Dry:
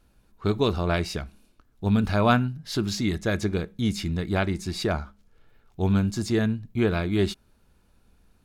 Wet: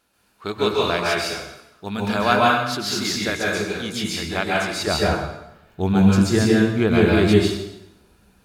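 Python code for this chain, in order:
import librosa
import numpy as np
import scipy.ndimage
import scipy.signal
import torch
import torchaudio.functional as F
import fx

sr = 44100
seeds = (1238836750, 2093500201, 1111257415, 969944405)

y = fx.highpass(x, sr, hz=fx.steps((0.0, 760.0), (4.87, 120.0)), slope=6)
y = fx.rev_plate(y, sr, seeds[0], rt60_s=0.87, hf_ratio=0.9, predelay_ms=120, drr_db=-4.5)
y = y * librosa.db_to_amplitude(4.0)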